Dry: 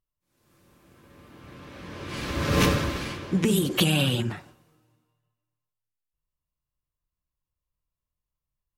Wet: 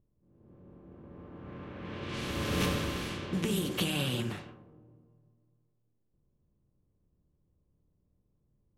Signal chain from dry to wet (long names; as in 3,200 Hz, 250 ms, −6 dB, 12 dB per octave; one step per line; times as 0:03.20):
compressor on every frequency bin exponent 0.6
low-pass that shuts in the quiet parts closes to 380 Hz, open at −21 dBFS
flanger 0.47 Hz, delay 8.4 ms, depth 3.7 ms, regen −68%
level −6.5 dB